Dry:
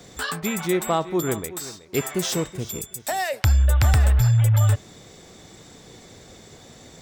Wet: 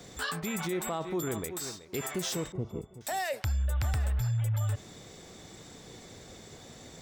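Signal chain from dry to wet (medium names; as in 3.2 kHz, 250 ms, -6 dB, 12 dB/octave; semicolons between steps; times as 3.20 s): 2.52–3.01 s: Savitzky-Golay filter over 65 samples; peak limiter -21.5 dBFS, peak gain reduction 10 dB; trim -3 dB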